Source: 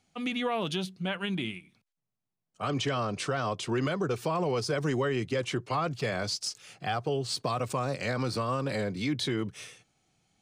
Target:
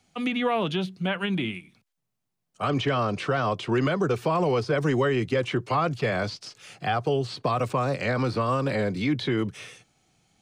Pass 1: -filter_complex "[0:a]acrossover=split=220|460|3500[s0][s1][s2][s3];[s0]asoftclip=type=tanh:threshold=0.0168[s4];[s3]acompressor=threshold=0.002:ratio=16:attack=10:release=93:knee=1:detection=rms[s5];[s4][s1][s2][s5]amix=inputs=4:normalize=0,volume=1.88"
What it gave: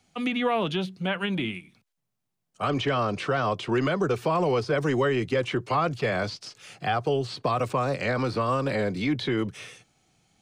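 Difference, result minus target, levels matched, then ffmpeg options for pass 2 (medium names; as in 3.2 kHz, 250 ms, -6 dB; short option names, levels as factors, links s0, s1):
saturation: distortion +17 dB
-filter_complex "[0:a]acrossover=split=220|460|3500[s0][s1][s2][s3];[s0]asoftclip=type=tanh:threshold=0.0596[s4];[s3]acompressor=threshold=0.002:ratio=16:attack=10:release=93:knee=1:detection=rms[s5];[s4][s1][s2][s5]amix=inputs=4:normalize=0,volume=1.88"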